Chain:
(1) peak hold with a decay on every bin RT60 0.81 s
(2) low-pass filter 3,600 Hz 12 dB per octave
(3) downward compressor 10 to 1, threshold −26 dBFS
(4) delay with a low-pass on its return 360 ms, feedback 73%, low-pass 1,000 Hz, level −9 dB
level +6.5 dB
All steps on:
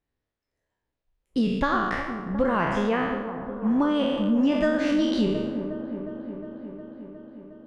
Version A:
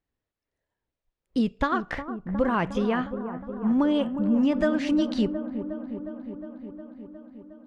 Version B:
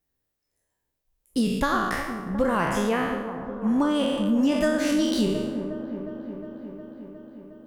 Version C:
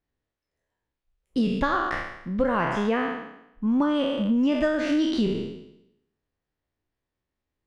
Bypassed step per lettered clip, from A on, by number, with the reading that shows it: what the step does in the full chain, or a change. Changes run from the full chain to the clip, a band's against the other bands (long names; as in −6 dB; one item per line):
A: 1, 250 Hz band +2.5 dB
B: 2, 4 kHz band +2.5 dB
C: 4, echo-to-direct ratio −11.0 dB to none audible